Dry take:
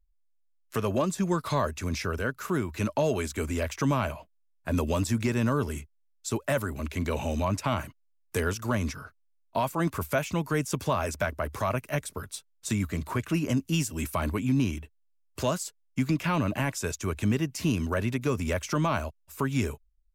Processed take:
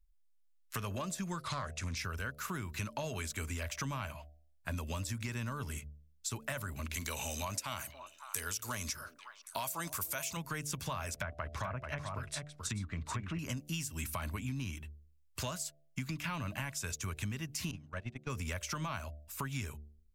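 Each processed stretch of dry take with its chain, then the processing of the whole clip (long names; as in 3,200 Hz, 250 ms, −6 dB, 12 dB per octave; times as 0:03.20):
0:01.41–0:01.97: low-pass filter 10,000 Hz 24 dB per octave + highs frequency-modulated by the lows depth 0.32 ms
0:06.94–0:10.37: bass and treble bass −7 dB, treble +11 dB + echo through a band-pass that steps 281 ms, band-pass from 440 Hz, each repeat 1.4 octaves, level −12 dB
0:11.14–0:13.39: treble cut that deepens with the level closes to 1,400 Hz, closed at −23.5 dBFS + single-tap delay 435 ms −7 dB
0:17.71–0:18.30: noise gate −26 dBFS, range −26 dB + high-frequency loss of the air 78 metres
whole clip: parametric band 380 Hz −13 dB 2.1 octaves; hum removal 74.07 Hz, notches 10; downward compressor, threshold −36 dBFS; level +1 dB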